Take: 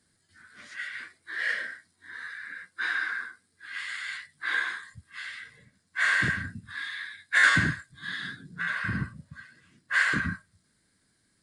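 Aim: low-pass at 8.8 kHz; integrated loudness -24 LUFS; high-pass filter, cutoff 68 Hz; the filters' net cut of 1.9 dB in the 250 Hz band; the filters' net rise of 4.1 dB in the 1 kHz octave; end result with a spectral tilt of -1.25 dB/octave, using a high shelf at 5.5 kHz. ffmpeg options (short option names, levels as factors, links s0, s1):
-af "highpass=68,lowpass=8800,equalizer=f=250:t=o:g=-3,equalizer=f=1000:t=o:g=6,highshelf=f=5500:g=-3.5,volume=1.41"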